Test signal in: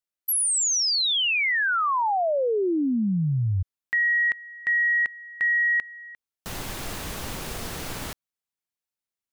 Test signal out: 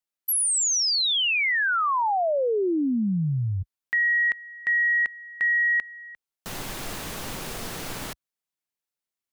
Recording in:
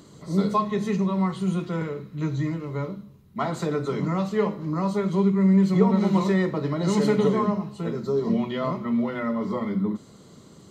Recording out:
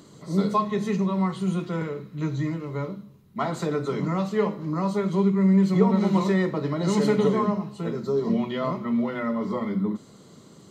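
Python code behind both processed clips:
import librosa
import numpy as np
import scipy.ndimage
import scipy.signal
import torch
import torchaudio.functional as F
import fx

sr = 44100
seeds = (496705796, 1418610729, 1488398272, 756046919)

y = fx.peak_eq(x, sr, hz=60.0, db=-14.0, octaves=0.69)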